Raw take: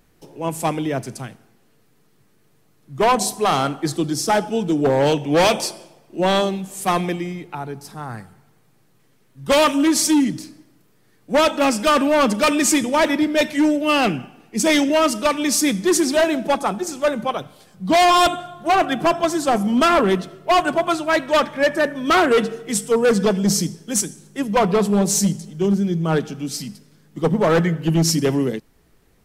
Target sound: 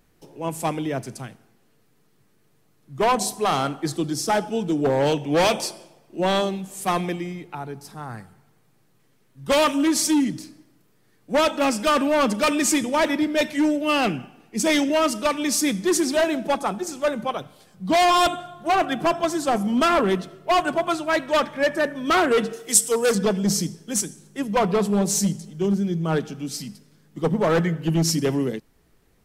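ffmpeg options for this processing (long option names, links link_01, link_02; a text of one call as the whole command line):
ffmpeg -i in.wav -filter_complex "[0:a]asettb=1/sr,asplit=3[link_01][link_02][link_03];[link_01]atrim=end=22.534[link_04];[link_02]atrim=start=22.53:end=23.15,asetpts=PTS-STARTPTS,afade=type=in:duration=0.004:curve=qsin,afade=type=out:start_time=0.616:duration=0.004:curve=qsin,bass=frequency=250:gain=-9,treble=frequency=4000:gain=12[link_05];[link_03]atrim=start=23.146[link_06];[link_04][link_05]acrossfade=duration=0.004:curve1=hsin:curve2=qsin[link_07];[link_07][link_06]acrossfade=duration=0.004:curve1=qsin:curve2=hsin,volume=-3.5dB" out.wav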